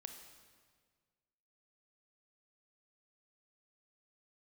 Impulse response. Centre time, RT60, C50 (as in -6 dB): 31 ms, 1.7 s, 6.5 dB